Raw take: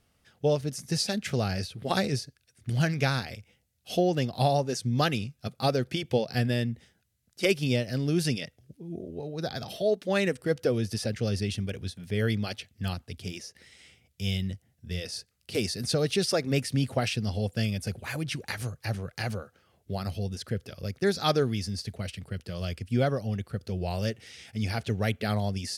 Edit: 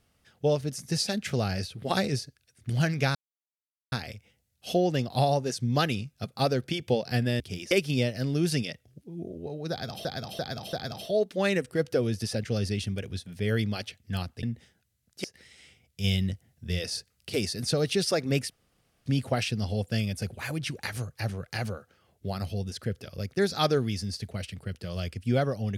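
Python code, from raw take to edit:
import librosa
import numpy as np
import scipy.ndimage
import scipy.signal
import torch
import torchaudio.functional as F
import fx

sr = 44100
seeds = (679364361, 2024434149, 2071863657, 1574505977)

y = fx.edit(x, sr, fx.insert_silence(at_s=3.15, length_s=0.77),
    fx.swap(start_s=6.63, length_s=0.81, other_s=13.14, other_length_s=0.31),
    fx.repeat(start_s=9.44, length_s=0.34, count=4),
    fx.clip_gain(start_s=14.25, length_s=1.26, db=3.5),
    fx.insert_room_tone(at_s=16.71, length_s=0.56), tone=tone)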